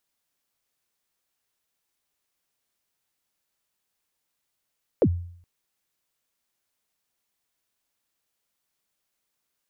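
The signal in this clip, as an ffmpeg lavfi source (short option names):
-f lavfi -i "aevalsrc='0.224*pow(10,-3*t/0.61)*sin(2*PI*(590*0.063/log(87/590)*(exp(log(87/590)*min(t,0.063)/0.063)-1)+87*max(t-0.063,0)))':d=0.42:s=44100"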